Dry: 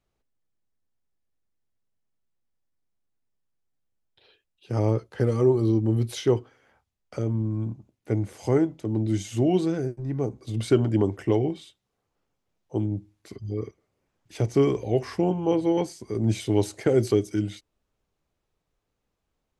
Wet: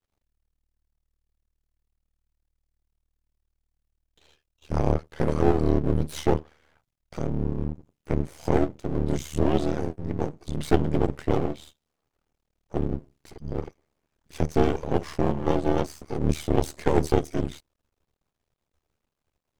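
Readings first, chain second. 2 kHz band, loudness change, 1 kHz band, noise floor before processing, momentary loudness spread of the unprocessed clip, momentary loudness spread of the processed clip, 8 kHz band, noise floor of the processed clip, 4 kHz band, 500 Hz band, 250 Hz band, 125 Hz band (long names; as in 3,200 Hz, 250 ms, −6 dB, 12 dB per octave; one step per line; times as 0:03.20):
+2.5 dB, −1.5 dB, +5.5 dB, −80 dBFS, 11 LU, 11 LU, −1.0 dB, −83 dBFS, −1.0 dB, −2.0 dB, −2.0 dB, −2.5 dB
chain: ring modulation 38 Hz
half-wave rectification
level +6 dB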